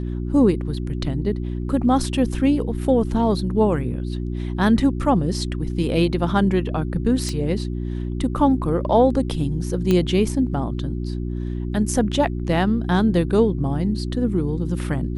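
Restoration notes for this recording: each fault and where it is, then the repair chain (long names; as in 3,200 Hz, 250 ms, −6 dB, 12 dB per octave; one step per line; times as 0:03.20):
mains hum 60 Hz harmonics 6 −26 dBFS
0:07.29: click −15 dBFS
0:09.91: click −8 dBFS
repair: click removal
hum removal 60 Hz, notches 6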